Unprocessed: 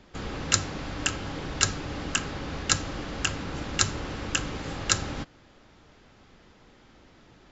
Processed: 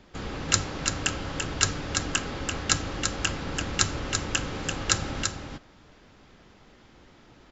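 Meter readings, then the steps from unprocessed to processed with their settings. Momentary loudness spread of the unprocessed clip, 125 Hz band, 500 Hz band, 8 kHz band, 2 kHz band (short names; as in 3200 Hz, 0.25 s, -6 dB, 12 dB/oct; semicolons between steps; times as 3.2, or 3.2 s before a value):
9 LU, +1.0 dB, +1.5 dB, n/a, +1.0 dB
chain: echo 0.338 s -5 dB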